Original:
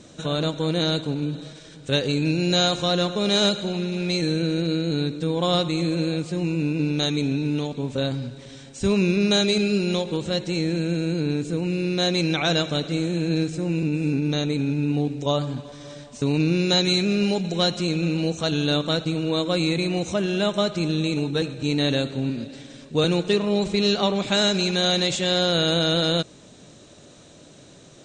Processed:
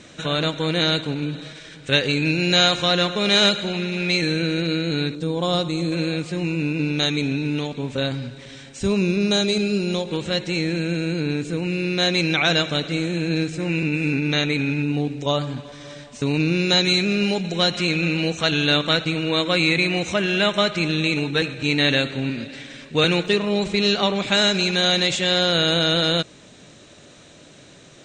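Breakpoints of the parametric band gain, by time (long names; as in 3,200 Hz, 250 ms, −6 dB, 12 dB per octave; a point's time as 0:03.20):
parametric band 2,100 Hz 1.5 octaves
+11 dB
from 0:05.15 −1 dB
from 0:05.92 +8 dB
from 0:08.83 0 dB
from 0:10.11 +8 dB
from 0:13.60 +14.5 dB
from 0:14.82 +7 dB
from 0:17.74 +13 dB
from 0:23.26 +7 dB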